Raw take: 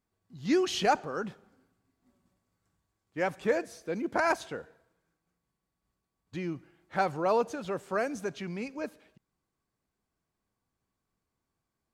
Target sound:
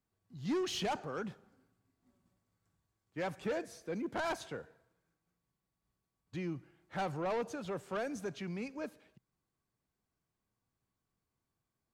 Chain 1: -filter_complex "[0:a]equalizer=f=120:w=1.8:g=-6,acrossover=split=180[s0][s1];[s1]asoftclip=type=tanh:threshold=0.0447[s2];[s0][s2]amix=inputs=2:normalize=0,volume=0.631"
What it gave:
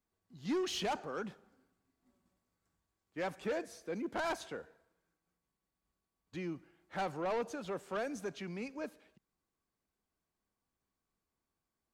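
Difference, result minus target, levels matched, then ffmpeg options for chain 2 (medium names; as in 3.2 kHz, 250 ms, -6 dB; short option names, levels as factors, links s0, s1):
125 Hz band -4.0 dB
-filter_complex "[0:a]equalizer=f=120:w=1.8:g=4.5,acrossover=split=180[s0][s1];[s1]asoftclip=type=tanh:threshold=0.0447[s2];[s0][s2]amix=inputs=2:normalize=0,volume=0.631"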